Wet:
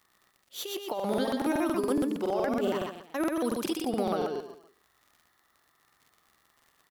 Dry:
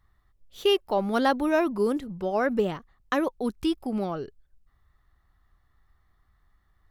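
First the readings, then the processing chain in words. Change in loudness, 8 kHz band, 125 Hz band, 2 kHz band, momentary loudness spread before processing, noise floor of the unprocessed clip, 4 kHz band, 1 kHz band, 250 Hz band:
−3.5 dB, +6.5 dB, −3.5 dB, −7.0 dB, 7 LU, −68 dBFS, −5.5 dB, −4.5 dB, −2.0 dB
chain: high-pass filter 290 Hz 12 dB per octave
high-shelf EQ 5,200 Hz +8.5 dB
compressor whose output falls as the input rises −27 dBFS, ratio −0.5
brickwall limiter −20.5 dBFS, peak gain reduction 5 dB
surface crackle 62 per second −47 dBFS
repeating echo 120 ms, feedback 34%, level −3 dB
regular buffer underruns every 0.14 s, samples 2,048, repeat, from 0:00.95

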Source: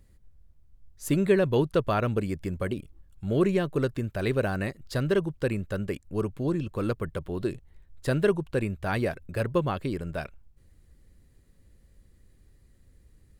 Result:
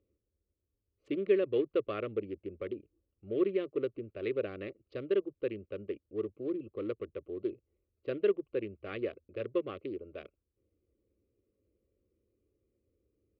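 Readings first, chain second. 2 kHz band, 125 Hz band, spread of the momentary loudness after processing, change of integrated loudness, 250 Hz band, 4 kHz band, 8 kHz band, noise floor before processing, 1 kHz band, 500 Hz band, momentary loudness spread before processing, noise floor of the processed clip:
−12.5 dB, −20.5 dB, 12 LU, −7.0 dB, −9.0 dB, −11.0 dB, below −30 dB, −60 dBFS, −15.0 dB, −5.0 dB, 9 LU, −85 dBFS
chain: adaptive Wiener filter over 25 samples
loudspeaker in its box 180–3,000 Hz, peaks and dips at 250 Hz −8 dB, 710 Hz −9 dB, 1,100 Hz +7 dB, 1,600 Hz −9 dB
phaser with its sweep stopped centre 390 Hz, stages 4
level −2.5 dB

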